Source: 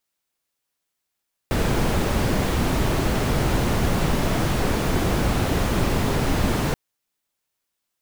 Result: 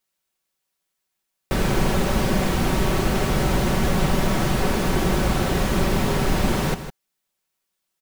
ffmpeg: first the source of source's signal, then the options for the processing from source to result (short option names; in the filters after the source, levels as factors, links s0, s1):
-f lavfi -i "anoisesrc=c=brown:a=0.442:d=5.23:r=44100:seed=1"
-filter_complex "[0:a]aecho=1:1:5.3:0.41,asplit=2[s0][s1];[s1]aecho=0:1:157:0.282[s2];[s0][s2]amix=inputs=2:normalize=0"